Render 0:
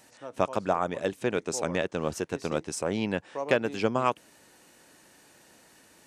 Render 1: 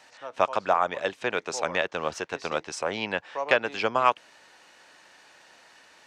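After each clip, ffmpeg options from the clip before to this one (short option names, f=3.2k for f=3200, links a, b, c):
-filter_complex "[0:a]acrossover=split=590 5800:gain=0.178 1 0.0891[a][b][c];[a][b][c]amix=inputs=3:normalize=0,volume=6.5dB"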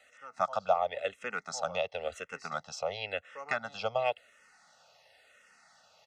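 -filter_complex "[0:a]aecho=1:1:1.5:0.94,asplit=2[a][b];[b]afreqshift=-0.95[c];[a][c]amix=inputs=2:normalize=1,volume=-7dB"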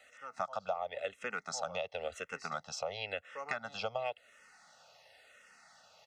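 -af "acompressor=threshold=-36dB:ratio=3,volume=1dB"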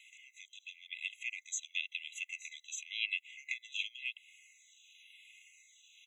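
-af "afftfilt=real='re*eq(mod(floor(b*sr/1024/2000),2),1)':imag='im*eq(mod(floor(b*sr/1024/2000),2),1)':win_size=1024:overlap=0.75,volume=6.5dB"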